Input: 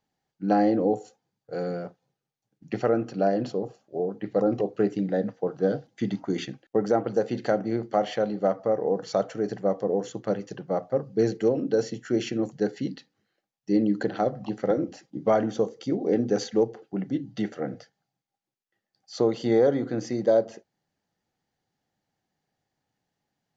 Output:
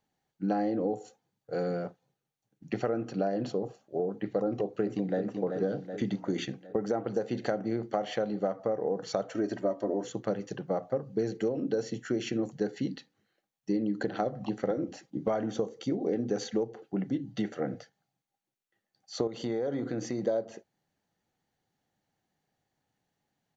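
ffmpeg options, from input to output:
-filter_complex "[0:a]asplit=2[a][b];[b]afade=t=in:st=4.48:d=0.01,afade=t=out:st=5.2:d=0.01,aecho=0:1:380|760|1140|1520|1900|2280:0.354813|0.195147|0.107331|0.0590321|0.0324676|0.0178572[c];[a][c]amix=inputs=2:normalize=0,asettb=1/sr,asplit=3[d][e][f];[d]atrim=end=9.344[g];[e]atrim=start=9.34:end=10.04,asetpts=PTS-STARTPTS,afade=t=in:d=0.004:c=qsin,afade=t=out:st=0.696:d=0.004:c=qsin,aecho=1:1:3.2:0.98,atrim=end_sample=30870[h];[f]atrim=start=10.036[i];[g][h]acrossfade=d=0.004:c1=hsin:c2=qsin[j];[j][i]acrossfade=d=0.004:c1=qsin:c2=hsin,asettb=1/sr,asplit=3[k][l][m];[k]atrim=end=19.274[n];[l]atrim=start=19.27:end=20.23,asetpts=PTS-STARTPTS,afade=t=in:d=0.004:c=qsin,afade=t=out:st=0.956:d=0.004:c=qsin,acompressor=threshold=-28dB:ratio=4:attack=3.2:release=140:knee=1:detection=peak[o];[m]atrim=start=20.226[p];[n][o]acrossfade=d=0.004:c1=hsin:c2=qsin[q];[q][p]acrossfade=d=0.004:c1=qsin:c2=hsin,acompressor=threshold=-26dB:ratio=6,bandreject=f=5k:w=10"

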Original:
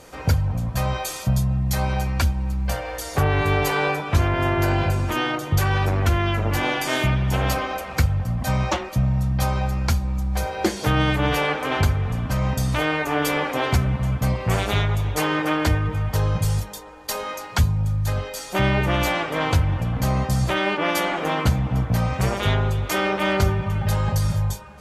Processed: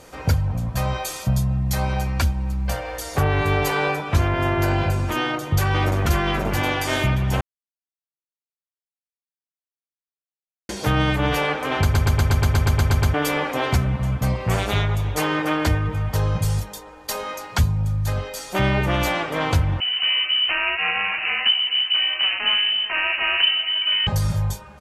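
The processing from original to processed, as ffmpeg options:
-filter_complex "[0:a]asplit=2[a][b];[b]afade=t=in:st=5.21:d=0.01,afade=t=out:st=6:d=0.01,aecho=0:1:530|1060|1590|2120|2650:0.668344|0.267338|0.106935|0.042774|0.0171096[c];[a][c]amix=inputs=2:normalize=0,asettb=1/sr,asplit=3[d][e][f];[d]atrim=end=19.804[g];[e]atrim=start=19.8:end=24.07,asetpts=PTS-STARTPTS,afade=t=in:d=0.004:c=qsin,afade=t=out:st=4.266:d=0.004:c=qsin,lowpass=f=2.6k:t=q:w=0.5098,lowpass=f=2.6k:t=q:w=0.6013,lowpass=f=2.6k:t=q:w=0.9,lowpass=f=2.6k:t=q:w=2.563,afreqshift=-3100[h];[f]atrim=start=24.066[i];[g][h]acrossfade=d=0.004:c1=hsin:c2=qsin[j];[j][i]acrossfade=d=0.004:c1=qsin:c2=hsin,asplit=14[k][l][m][n][o][p][q][r][s][t][u][v][w][x];[k]atrim=end=7.41,asetpts=PTS-STARTPTS,afade=t=out:st=7.406:d=0.004:c=hsin[y];[l]atrim=start=7.41:end=10.69,asetpts=PTS-STARTPTS,volume=0[z];[m]atrim=start=10.69:end=11.942,asetpts=PTS-STARTPTS,afade=t=in:d=0.004:c=hsin[aa];[n]atrim=start=11.818:end=11.942[ab];[o]atrim=start=11.818:end=11.942[ac];[p]atrim=start=11.818:end=11.942[ad];[q]atrim=start=11.818:end=11.942[ae];[r]atrim=start=11.818:end=11.942[af];[s]atrim=start=11.818:end=11.942[ag];[t]atrim=start=11.818:end=11.942[ah];[u]atrim=start=11.818:end=11.942[ai];[v]atrim=start=11.818:end=11.942[aj];[w]atrim=start=11.818:end=11.942[ak];[x]atrim=start=13.138[al];[y][z][aa]concat=n=3:v=0:a=1[am];[am][ab]acrossfade=d=0.004:c1=hsin:c2=hsin[an];[an][ac]acrossfade=d=0.004:c1=hsin:c2=hsin[ao];[ao][ad]acrossfade=d=0.004:c1=hsin:c2=hsin[ap];[ap][ae]acrossfade=d=0.004:c1=hsin:c2=hsin[aq];[aq][af]acrossfade=d=0.004:c1=hsin:c2=hsin[ar];[ar][ag]acrossfade=d=0.004:c1=hsin:c2=hsin[as];[as][ah]acrossfade=d=0.004:c1=hsin:c2=hsin[at];[at][ai]acrossfade=d=0.004:c1=hsin:c2=hsin[au];[au][aj]acrossfade=d=0.004:c1=hsin:c2=hsin[av];[av][ak]acrossfade=d=0.004:c1=hsin:c2=hsin[aw];[aw][al]acrossfade=d=0.004:c1=hsin:c2=hsin"

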